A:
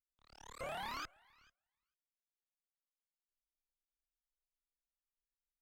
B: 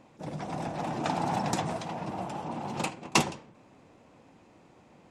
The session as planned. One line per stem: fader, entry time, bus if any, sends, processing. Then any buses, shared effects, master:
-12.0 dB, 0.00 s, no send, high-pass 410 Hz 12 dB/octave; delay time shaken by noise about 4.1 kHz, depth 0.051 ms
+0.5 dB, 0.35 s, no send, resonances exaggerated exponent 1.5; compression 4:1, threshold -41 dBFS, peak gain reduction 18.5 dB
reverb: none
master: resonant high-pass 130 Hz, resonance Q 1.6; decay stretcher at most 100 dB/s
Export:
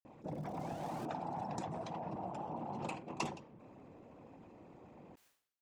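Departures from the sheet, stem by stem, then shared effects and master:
stem B: entry 0.35 s -> 0.05 s; master: missing resonant high-pass 130 Hz, resonance Q 1.6

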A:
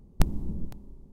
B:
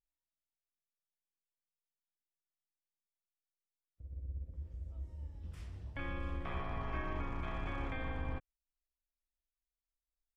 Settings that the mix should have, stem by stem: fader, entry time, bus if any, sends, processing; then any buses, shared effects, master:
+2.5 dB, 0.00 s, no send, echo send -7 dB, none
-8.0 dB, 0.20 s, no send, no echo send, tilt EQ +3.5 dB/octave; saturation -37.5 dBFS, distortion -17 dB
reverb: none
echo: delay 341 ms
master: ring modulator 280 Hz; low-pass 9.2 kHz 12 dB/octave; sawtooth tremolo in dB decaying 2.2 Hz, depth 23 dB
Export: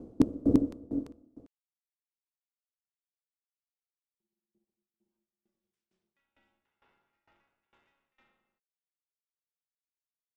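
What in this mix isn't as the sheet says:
stem A +2.5 dB -> +9.5 dB; stem B -8.0 dB -> -19.0 dB

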